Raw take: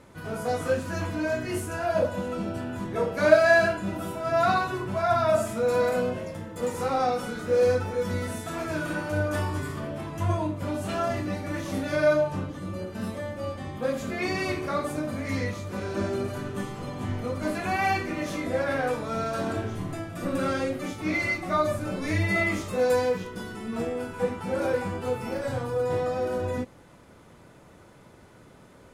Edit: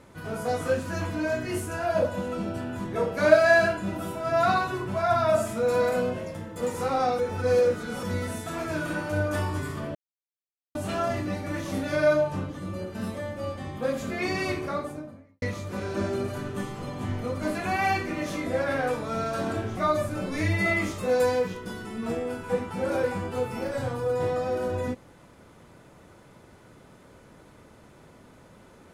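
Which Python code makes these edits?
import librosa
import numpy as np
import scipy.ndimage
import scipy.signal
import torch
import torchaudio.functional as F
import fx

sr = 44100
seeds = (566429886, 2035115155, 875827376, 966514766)

y = fx.studio_fade_out(x, sr, start_s=14.49, length_s=0.93)
y = fx.edit(y, sr, fx.reverse_span(start_s=7.19, length_s=0.84),
    fx.silence(start_s=9.95, length_s=0.8),
    fx.cut(start_s=19.77, length_s=1.7), tone=tone)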